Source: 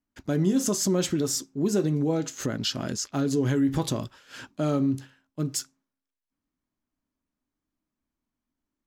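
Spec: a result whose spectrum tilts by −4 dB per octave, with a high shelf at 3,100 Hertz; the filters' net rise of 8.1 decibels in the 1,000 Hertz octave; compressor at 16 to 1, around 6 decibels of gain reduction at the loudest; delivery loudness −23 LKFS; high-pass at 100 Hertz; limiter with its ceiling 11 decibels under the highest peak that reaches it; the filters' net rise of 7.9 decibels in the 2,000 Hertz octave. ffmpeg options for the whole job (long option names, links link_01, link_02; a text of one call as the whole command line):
ffmpeg -i in.wav -af "highpass=100,equalizer=frequency=1000:width_type=o:gain=8.5,equalizer=frequency=2000:width_type=o:gain=5.5,highshelf=frequency=3100:gain=5,acompressor=threshold=-24dB:ratio=16,volume=11dB,alimiter=limit=-13dB:level=0:latency=1" out.wav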